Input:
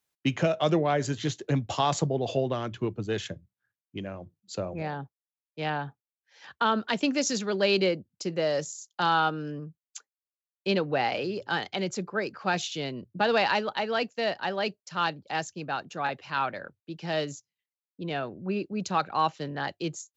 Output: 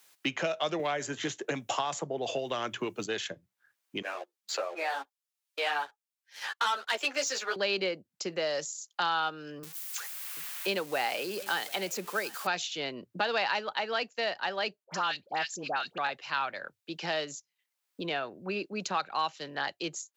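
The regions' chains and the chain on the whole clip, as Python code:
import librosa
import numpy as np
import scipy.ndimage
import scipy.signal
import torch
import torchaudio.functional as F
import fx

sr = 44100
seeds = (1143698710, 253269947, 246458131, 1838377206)

y = fx.chain(x, sr, fx.peak_eq(hz=4300.0, db=-9.5, octaves=0.8),
    fx.band_squash(depth_pct=100), at=(0.79, 3.06))
y = fx.chain(y, sr, fx.bessel_highpass(hz=550.0, order=8),
    fx.leveller(passes=2),
    fx.ensemble(), at=(4.02, 7.56))
y = fx.chain(y, sr, fx.crossing_spikes(level_db=-32.5),
    fx.highpass(hz=140.0, slope=12),
    fx.echo_single(ms=734, db=-23.0), at=(9.63, 12.47))
y = fx.chain(y, sr, fx.dispersion(late='highs', ms=76.0, hz=1400.0),
    fx.band_squash(depth_pct=40), at=(14.84, 15.98))
y = fx.highpass(y, sr, hz=860.0, slope=6)
y = fx.band_squash(y, sr, depth_pct=70)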